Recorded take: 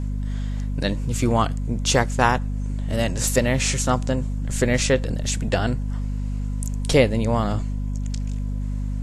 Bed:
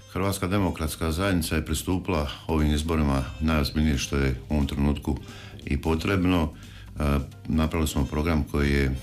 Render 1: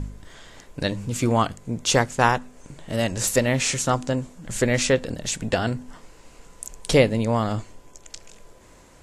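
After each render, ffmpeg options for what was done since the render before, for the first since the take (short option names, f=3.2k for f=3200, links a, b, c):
-af "bandreject=f=50:t=h:w=4,bandreject=f=100:t=h:w=4,bandreject=f=150:t=h:w=4,bandreject=f=200:t=h:w=4,bandreject=f=250:t=h:w=4"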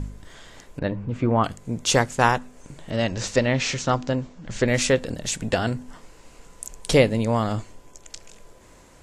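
-filter_complex "[0:a]asettb=1/sr,asplit=3[a][b][c];[a]atrim=end=0.794[d];[b]atrim=start=0.79:end=1.44,asetpts=PTS-STARTPTS,afade=t=in:d=0.004:c=qsin,afade=t=out:st=0.646:d=0.004:c=qsin,lowpass=1.7k[e];[c]atrim=start=1.436[f];[d][e]acrossfade=d=0.004:c1=hsin:c2=qsin[g];[g][f]acrossfade=d=0.004:c1=qsin:c2=hsin,asettb=1/sr,asplit=3[h][i][j];[h]atrim=end=2.904[k];[i]atrim=start=2.9:end=4.68,asetpts=PTS-STARTPTS,afade=t=in:d=0.004:c=qsin,afade=t=out:st=1.776:d=0.004:c=qsin,lowpass=f=5.8k:w=0.5412,lowpass=f=5.8k:w=1.3066[l];[j]atrim=start=4.676[m];[k][l]acrossfade=d=0.004:c1=hsin:c2=qsin[n];[n][m]acrossfade=d=0.004:c1=qsin:c2=hsin"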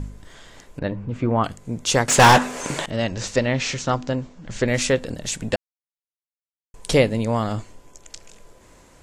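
-filter_complex "[0:a]asettb=1/sr,asplit=3[a][b][c];[a]atrim=end=2.084[d];[b]atrim=start=2.08:end=2.86,asetpts=PTS-STARTPTS,afade=t=in:d=0.004:c=qsin,afade=t=out:st=0.776:d=0.004:c=qsin,asplit=2[e][f];[f]highpass=f=720:p=1,volume=31dB,asoftclip=type=tanh:threshold=-3.5dB[g];[e][g]amix=inputs=2:normalize=0,lowpass=f=6.1k:p=1,volume=-6dB[h];[c]atrim=start=2.856[i];[d][h]acrossfade=d=0.004:c1=hsin:c2=qsin[j];[j][i]acrossfade=d=0.004:c1=qsin:c2=hsin,asplit=3[k][l][m];[k]atrim=end=5.56,asetpts=PTS-STARTPTS,afade=t=out:st=5.556:d=0.004:c=hsin[n];[l]atrim=start=5.56:end=6.74,asetpts=PTS-STARTPTS,volume=0[o];[m]atrim=start=6.74,asetpts=PTS-STARTPTS,afade=t=in:d=0.004:c=hsin[p];[n][o][p]concat=n=3:v=0:a=1"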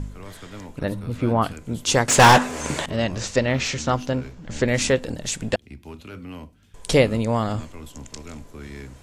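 -filter_complex "[1:a]volume=-15dB[a];[0:a][a]amix=inputs=2:normalize=0"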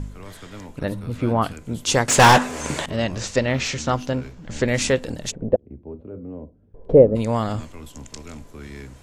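-filter_complex "[0:a]asplit=3[a][b][c];[a]afade=t=out:st=5.3:d=0.02[d];[b]lowpass=f=510:t=q:w=2.3,afade=t=in:st=5.3:d=0.02,afade=t=out:st=7.15:d=0.02[e];[c]afade=t=in:st=7.15:d=0.02[f];[d][e][f]amix=inputs=3:normalize=0"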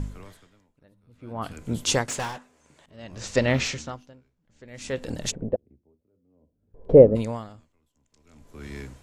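-af "aeval=exprs='val(0)*pow(10,-33*(0.5-0.5*cos(2*PI*0.57*n/s))/20)':c=same"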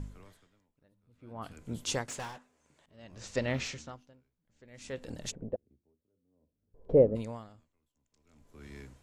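-af "volume=-10dB"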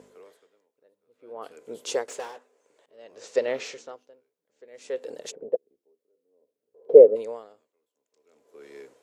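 -af "highpass=f=450:t=q:w=4.9"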